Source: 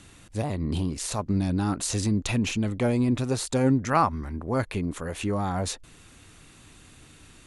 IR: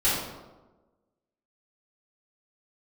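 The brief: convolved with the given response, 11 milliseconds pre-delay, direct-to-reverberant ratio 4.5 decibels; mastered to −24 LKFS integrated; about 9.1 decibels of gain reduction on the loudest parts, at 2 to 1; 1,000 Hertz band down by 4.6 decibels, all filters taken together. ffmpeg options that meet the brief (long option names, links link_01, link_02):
-filter_complex "[0:a]equalizer=frequency=1000:width_type=o:gain=-6,acompressor=threshold=-35dB:ratio=2,asplit=2[link_01][link_02];[1:a]atrim=start_sample=2205,adelay=11[link_03];[link_02][link_03]afir=irnorm=-1:irlink=0,volume=-18dB[link_04];[link_01][link_04]amix=inputs=2:normalize=0,volume=8.5dB"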